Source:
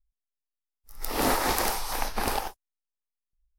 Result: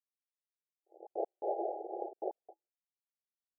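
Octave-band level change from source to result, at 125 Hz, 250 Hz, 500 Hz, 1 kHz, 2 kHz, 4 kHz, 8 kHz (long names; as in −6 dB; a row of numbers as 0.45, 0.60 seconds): below −40 dB, −13.5 dB, −4.5 dB, −12.5 dB, below −40 dB, below −40 dB, below −40 dB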